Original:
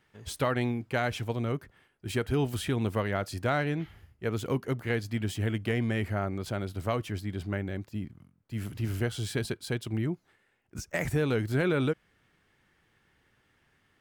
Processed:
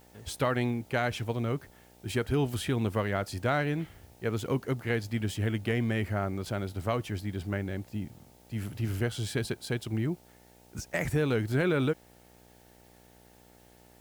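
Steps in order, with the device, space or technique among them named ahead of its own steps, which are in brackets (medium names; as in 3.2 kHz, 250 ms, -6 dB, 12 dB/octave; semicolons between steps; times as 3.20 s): video cassette with head-switching buzz (mains buzz 60 Hz, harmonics 15, -59 dBFS -2 dB/octave; white noise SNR 32 dB)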